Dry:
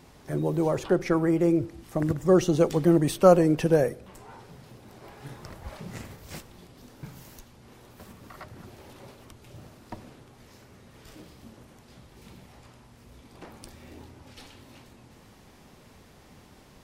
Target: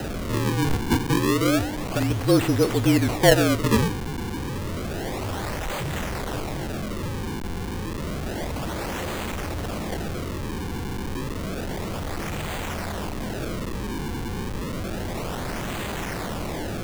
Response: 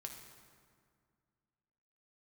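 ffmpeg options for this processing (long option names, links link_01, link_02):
-af "aeval=exprs='val(0)+0.5*0.0708*sgn(val(0))':channel_layout=same,acrusher=samples=38:mix=1:aa=0.000001:lfo=1:lforange=60.8:lforate=0.3,afreqshift=-37,volume=-1dB"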